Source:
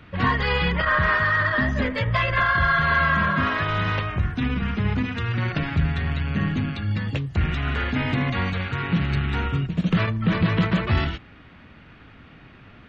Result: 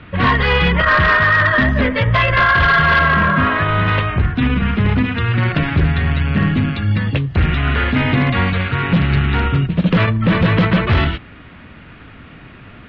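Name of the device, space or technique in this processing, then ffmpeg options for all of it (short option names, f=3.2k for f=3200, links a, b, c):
synthesiser wavefolder: -filter_complex "[0:a]aeval=exprs='0.168*(abs(mod(val(0)/0.168+3,4)-2)-1)':c=same,lowpass=f=3.9k:w=0.5412,lowpass=f=3.9k:w=1.3066,bandreject=f=810:w=25,asettb=1/sr,asplit=3[a][b][c];[a]atrim=end=2.994[d];[b]atrim=start=2.99:end=3.88,asetpts=PTS-STARTPTS,afade=t=in:d=0.004:c=qsin,afade=t=out:st=0.886:d=0.004:c=qsin,highshelf=f=4.2k:g=-10.5[e];[c]atrim=start=3.876[f];[d][e]acrossfade=d=0.004:c1=hsin:c2=qsin[g];[g][f]acrossfade=d=0.004:c1=qsin:c2=hsin,volume=8.5dB"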